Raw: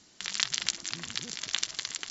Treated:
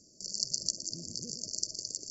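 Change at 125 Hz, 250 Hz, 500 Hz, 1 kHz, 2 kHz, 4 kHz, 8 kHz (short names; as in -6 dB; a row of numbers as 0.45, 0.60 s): +0.5 dB, +1.0 dB, 0.0 dB, under -30 dB, under -40 dB, -5.0 dB, n/a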